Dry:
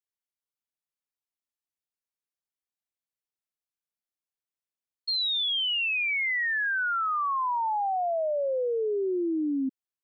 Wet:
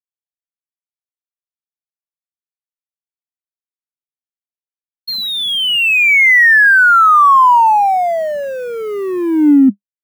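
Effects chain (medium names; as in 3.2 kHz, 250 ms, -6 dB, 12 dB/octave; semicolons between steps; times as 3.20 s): companding laws mixed up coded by A; resonant low shelf 260 Hz +8.5 dB, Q 3; reverse; upward compressor, threshold -40 dBFS; reverse; graphic EQ 250/500/1000/2000/4000 Hz +12/-12/+6/+5/-10 dB; loudness maximiser +20 dB; trim -3 dB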